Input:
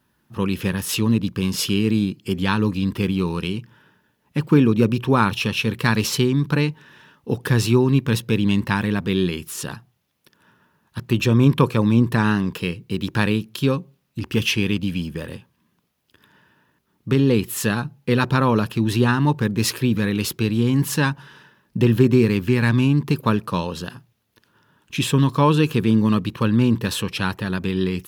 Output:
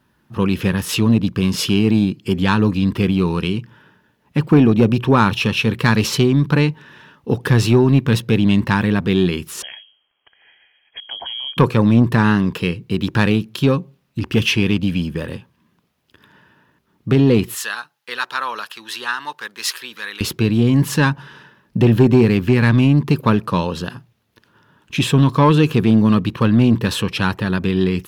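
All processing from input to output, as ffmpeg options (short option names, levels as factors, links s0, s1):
-filter_complex "[0:a]asettb=1/sr,asplit=3[s0][s1][s2];[s0]atrim=end=9.624[s3];[s1]atrim=start=9.62:end=11.57,asetpts=PTS-STARTPTS,afade=t=in:d=0.004:c=qsin,afade=t=out:st=1.946:d=0.004:c=qsin,bandreject=f=224.9:t=h:w=4,bandreject=f=449.8:t=h:w=4,bandreject=f=674.7:t=h:w=4,acompressor=threshold=0.0178:ratio=3:attack=3.2:release=140:knee=1:detection=peak,lowpass=f=2900:t=q:w=0.5098,lowpass=f=2900:t=q:w=0.6013,lowpass=f=2900:t=q:w=0.9,lowpass=f=2900:t=q:w=2.563,afreqshift=-3400[s4];[s2]atrim=start=11.566[s5];[s3][s4]acrossfade=d=0.004:c1=hsin:c2=qsin[s6];[s6][s5]acrossfade=d=0.004:c1=qsin:c2=hsin,asettb=1/sr,asplit=3[s7][s8][s9];[s7]atrim=end=17.554[s10];[s8]atrim=start=17.55:end=20.21,asetpts=PTS-STARTPTS,afade=t=in:d=0.004:c=qsin,afade=t=out:st=2.656:d=0.004:c=qsin,highpass=1400,equalizer=f=2400:t=o:w=0.39:g=-5.5[s11];[s9]atrim=start=20.206[s12];[s10][s11]acrossfade=d=0.004:c1=hsin:c2=qsin[s13];[s13][s12]acrossfade=d=0.004:c1=qsin:c2=hsin,highshelf=f=6100:g=-8,acontrast=77,volume=0.841"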